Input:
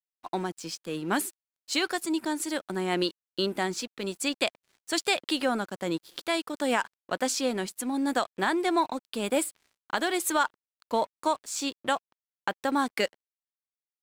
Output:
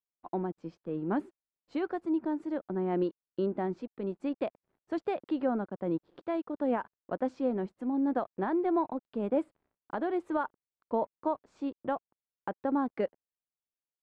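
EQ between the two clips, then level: Bessel low-pass 630 Hz, order 2; 0.0 dB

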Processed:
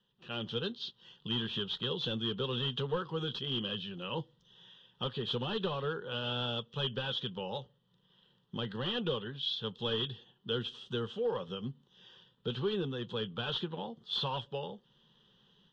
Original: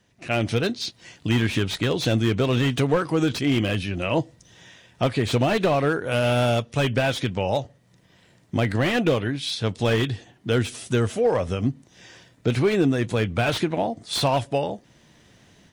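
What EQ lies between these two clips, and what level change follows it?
four-pole ladder low-pass 3.4 kHz, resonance 80%; static phaser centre 440 Hz, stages 8; +1.0 dB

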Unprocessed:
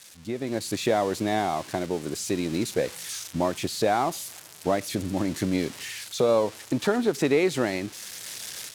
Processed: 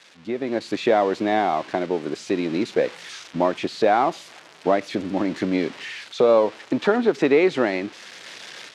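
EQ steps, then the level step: band-pass 230–3100 Hz; +5.5 dB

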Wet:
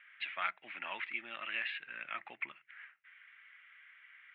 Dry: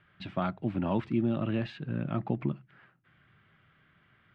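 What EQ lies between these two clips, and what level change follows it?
resonant high-pass 2.1 kHz, resonance Q 3.5; low-pass 3.7 kHz 24 dB/octave; distance through air 250 m; +5.5 dB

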